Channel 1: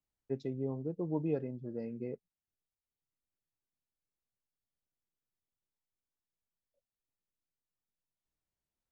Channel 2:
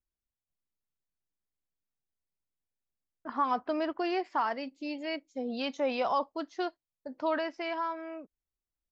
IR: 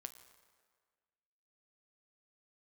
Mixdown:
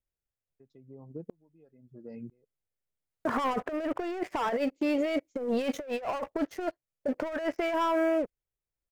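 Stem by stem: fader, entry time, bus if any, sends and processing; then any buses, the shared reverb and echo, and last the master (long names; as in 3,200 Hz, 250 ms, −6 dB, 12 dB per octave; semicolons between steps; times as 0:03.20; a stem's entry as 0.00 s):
+2.5 dB, 0.30 s, no send, reverb reduction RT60 0.67 s; downward compressor 5 to 1, threshold −39 dBFS, peak gain reduction 10 dB; tremolo with a ramp in dB swelling 1 Hz, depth 36 dB
+1.5 dB, 0.00 s, no send, high-shelf EQ 3,200 Hz −5 dB; leveller curve on the samples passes 3; octave-band graphic EQ 125/250/500/1,000/2,000/4,000 Hz +6/−6/+7/−5/+3/−8 dB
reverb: not used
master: compressor whose output falls as the input rises −27 dBFS, ratio −0.5; brickwall limiter −20.5 dBFS, peak gain reduction 5.5 dB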